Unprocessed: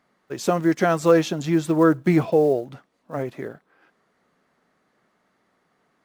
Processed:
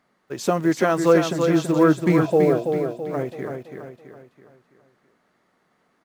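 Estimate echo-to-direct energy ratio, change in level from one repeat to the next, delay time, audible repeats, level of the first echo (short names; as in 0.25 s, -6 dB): -5.0 dB, -7.0 dB, 0.331 s, 5, -6.0 dB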